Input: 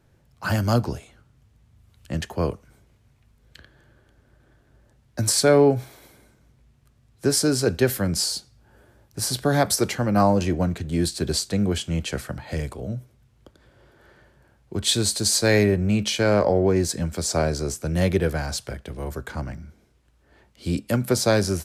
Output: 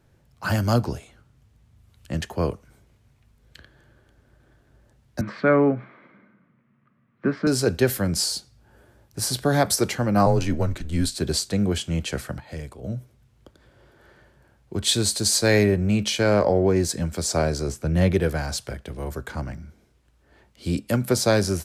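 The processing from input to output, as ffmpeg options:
-filter_complex "[0:a]asettb=1/sr,asplit=3[a][b][c];[a]atrim=end=5.214[d];[b]atrim=start=5.21:end=7.47,asetpts=PTS-STARTPTS,afade=t=in:d=0.004:c=qsin,afade=t=out:st=2.256:d=0.004:c=qsin,highpass=f=150:w=0.5412,highpass=f=150:w=1.3066,equalizer=f=200:t=q:w=4:g=9,equalizer=f=420:t=q:w=4:g=-5,equalizer=f=780:t=q:w=4:g=-8,equalizer=f=1.2k:t=q:w=4:g=8,equalizer=f=2k:t=q:w=4:g=4,lowpass=f=2.3k:w=0.5412,lowpass=f=2.3k:w=1.3066[e];[c]atrim=start=7.466[f];[d][e]acrossfade=d=0.004:c1=hsin:c2=qsin[g];[g][f]acrossfade=d=0.004:c1=qsin:c2=hsin,asettb=1/sr,asplit=3[h][i][j];[h]atrim=end=10.264[k];[i]atrim=start=10.26:end=11.18,asetpts=PTS-STARTPTS,afade=t=in:d=0.004:c=qsin,afade=t=out:st=0.916:d=0.004:c=qsin,afreqshift=-78[l];[j]atrim=start=11.176[m];[k][l]acrossfade=d=0.004:c1=hsin:c2=qsin[n];[n][m]acrossfade=d=0.004:c1=qsin:c2=hsin,asettb=1/sr,asplit=3[o][p][q];[o]atrim=end=17.684[r];[p]atrim=start=17.68:end=18.14,asetpts=PTS-STARTPTS,afade=t=in:d=0.004:c=qsin,afade=t=out:st=0.456:d=0.004:c=qsin,bass=f=250:g=3,treble=f=4k:g=-7[s];[q]atrim=start=18.136[t];[r][s]acrossfade=d=0.004:c1=hsin:c2=qsin[u];[u][t]acrossfade=d=0.004:c1=qsin:c2=hsin,asplit=3[v][w][x];[v]atrim=end=12.402[y];[w]atrim=start=12.398:end=12.842,asetpts=PTS-STARTPTS,volume=-6.5dB[z];[x]atrim=start=12.838[aa];[y][z]acrossfade=d=0.004:c1=hsin:c2=hsin[ab];[ab][aa]acrossfade=d=0.004:c1=hsin:c2=hsin"

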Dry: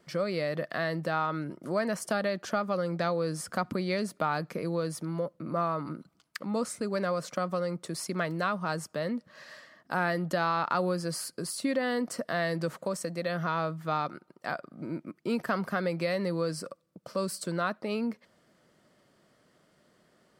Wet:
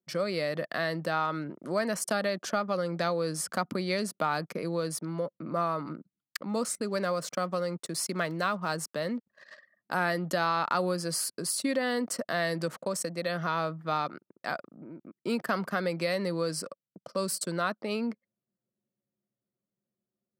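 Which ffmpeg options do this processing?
-filter_complex "[0:a]asettb=1/sr,asplit=3[a][b][c];[a]atrim=end=6.494[d];[b]atrim=start=6.49:end=9.43,asetpts=PTS-STARTPTS,afade=t=in:d=0.004:c=qsin,afade=t=out:st=2.936:d=0.004:c=qsin,aeval=exprs='val(0)*gte(abs(val(0)),0.002)':c=same[e];[c]atrim=start=9.426[f];[d][e]acrossfade=d=0.004:c1=hsin:c2=qsin[g];[g][f]acrossfade=d=0.004:c1=qsin:c2=hsin,asettb=1/sr,asplit=3[h][i][j];[h]atrim=end=14.614[k];[i]atrim=start=14.61:end=15.21,asetpts=PTS-STARTPTS,afade=t=in:d=0.004:c=qsin,afade=t=out:st=0.596:d=0.004:c=qsin,acompressor=threshold=-44dB:ratio=2.5:attack=3.2:release=140:knee=1:detection=peak[l];[j]atrim=start=15.206[m];[k][l]acrossfade=d=0.004:c1=hsin:c2=qsin[n];[n][m]acrossfade=d=0.004:c1=qsin:c2=hsin,anlmdn=0.0251,highpass=140,highshelf=f=4k:g=7"

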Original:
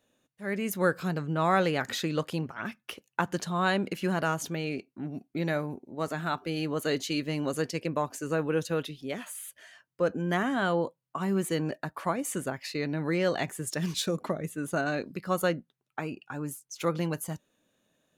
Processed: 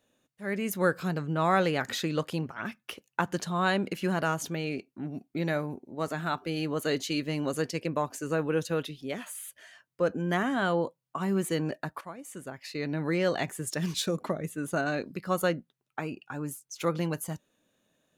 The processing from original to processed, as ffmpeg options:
-filter_complex "[0:a]asplit=2[a][b];[a]atrim=end=12.01,asetpts=PTS-STARTPTS,afade=t=out:st=12.006:d=0.004:c=hsin:silence=0.211349[c];[b]atrim=start=12.01,asetpts=PTS-STARTPTS,afade=t=in:d=0.92:c=qua:silence=0.211349[d];[c][d]concat=n=2:v=0:a=1"

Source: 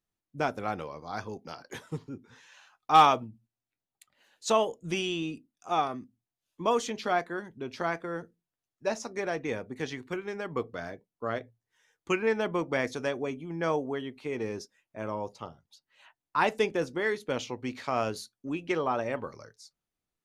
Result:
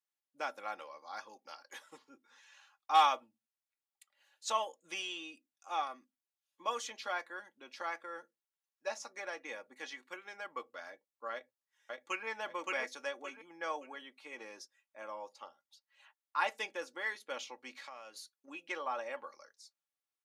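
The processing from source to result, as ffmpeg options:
-filter_complex "[0:a]asplit=2[a][b];[b]afade=t=in:st=11.32:d=0.01,afade=t=out:st=12.27:d=0.01,aecho=0:1:570|1140|1710|2280:0.891251|0.267375|0.0802126|0.0240638[c];[a][c]amix=inputs=2:normalize=0,asettb=1/sr,asplit=3[d][e][f];[d]atrim=end=17.774[g];[e]atrim=start=17.77:end=18.48,asetpts=PTS-STARTPTS,afade=t=in:d=0.004:c=qsin,afade=t=out:st=0.706:d=0.004:c=qsin,acompressor=threshold=-39dB:ratio=3:attack=3.2:release=140:knee=1:detection=peak[h];[f]atrim=start=18.476[i];[g][h]acrossfade=d=0.004:c1=hsin:c2=qsin[j];[j][i]acrossfade=d=0.004:c1=qsin:c2=hsin,highpass=740,aecho=1:1:3.6:0.59,volume=-6.5dB"

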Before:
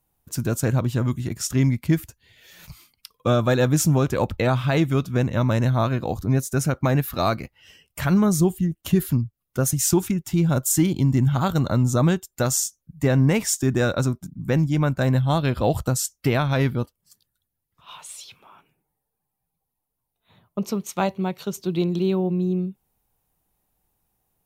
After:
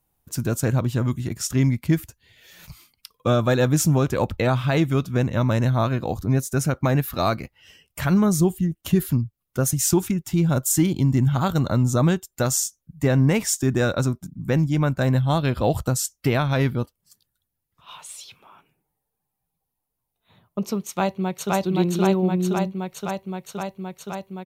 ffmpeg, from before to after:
-filter_complex "[0:a]asplit=2[a][b];[b]afade=t=in:st=20.86:d=0.01,afade=t=out:st=21.54:d=0.01,aecho=0:1:520|1040|1560|2080|2600|3120|3640|4160|4680|5200|5720|6240:1|0.8|0.64|0.512|0.4096|0.32768|0.262144|0.209715|0.167772|0.134218|0.107374|0.0858993[c];[a][c]amix=inputs=2:normalize=0"

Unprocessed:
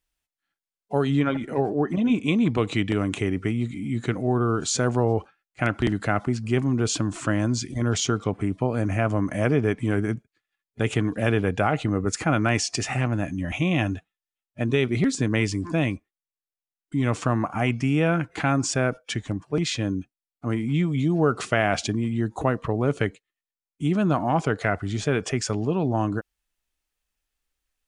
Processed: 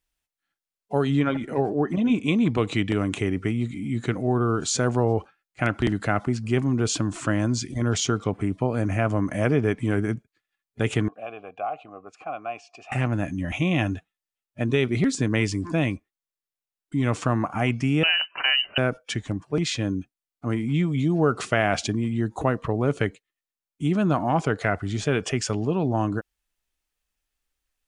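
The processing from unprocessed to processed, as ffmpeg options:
-filter_complex "[0:a]asettb=1/sr,asplit=3[a][b][c];[a]atrim=end=11.084[d];[b]atrim=start=11.08:end=12.92,asetpts=PTS-STARTPTS,afade=t=in:d=0.004:c=qsin,afade=t=out:st=1.836:d=0.004:c=qsin,asplit=3[e][f][g];[e]bandpass=f=730:t=q:w=8,volume=0dB[h];[f]bandpass=f=1.09k:t=q:w=8,volume=-6dB[i];[g]bandpass=f=2.44k:t=q:w=8,volume=-9dB[j];[h][i][j]amix=inputs=3:normalize=0[k];[c]atrim=start=12.916[l];[d][k]acrossfade=d=0.004:c1=hsin:c2=qsin[m];[m][l]acrossfade=d=0.004:c1=qsin:c2=hsin,asettb=1/sr,asplit=3[n][o][p];[n]atrim=end=18.034[q];[o]atrim=start=18.03:end=18.78,asetpts=PTS-STARTPTS,afade=t=in:d=0.004:c=qsin,afade=t=out:st=0.746:d=0.004:c=qsin,lowpass=f=2.6k:t=q:w=0.5098,lowpass=f=2.6k:t=q:w=0.6013,lowpass=f=2.6k:t=q:w=0.9,lowpass=f=2.6k:t=q:w=2.563,afreqshift=-3100[r];[p]atrim=start=18.776[s];[q][r]acrossfade=d=0.004:c1=hsin:c2=qsin[t];[t][s]acrossfade=d=0.004:c1=qsin:c2=hsin,asettb=1/sr,asplit=3[u][v][w];[u]atrim=end=25.054[x];[v]atrim=start=25.05:end=25.6,asetpts=PTS-STARTPTS,afade=t=in:d=0.004:c=qsin,afade=t=out:st=0.546:d=0.004:c=qsin,equalizer=f=2.9k:t=o:w=0.27:g=6.5[y];[w]atrim=start=25.596[z];[x][y]acrossfade=d=0.004:c1=hsin:c2=qsin[aa];[aa][z]acrossfade=d=0.004:c1=qsin:c2=hsin"

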